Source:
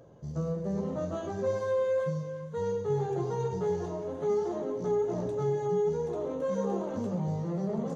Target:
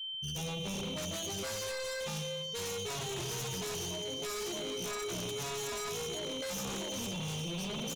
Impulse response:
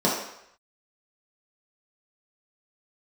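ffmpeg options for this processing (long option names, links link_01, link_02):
-filter_complex "[0:a]aeval=exprs='val(0)+0.00141*sin(2*PI*3100*n/s)':channel_layout=same,aexciter=amount=13.8:drive=1.5:freq=2200,afftfilt=real='re*gte(hypot(re,im),0.02)':imag='im*gte(hypot(re,im),0.02)':win_size=1024:overlap=0.75,equalizer=frequency=320:width=0.63:gain=-2.5,aecho=1:1:353|706|1059:0.2|0.0599|0.018,acrossover=split=480[link_01][link_02];[link_02]acompressor=threshold=-32dB:ratio=4[link_03];[link_01][link_03]amix=inputs=2:normalize=0,aeval=exprs='0.0282*(abs(mod(val(0)/0.0282+3,4)-2)-1)':channel_layout=same,adynamicequalizer=threshold=0.00355:dfrequency=670:dqfactor=1.5:tfrequency=670:tqfactor=1.5:attack=5:release=100:ratio=0.375:range=1.5:mode=cutabove:tftype=bell,volume=35dB,asoftclip=hard,volume=-35dB"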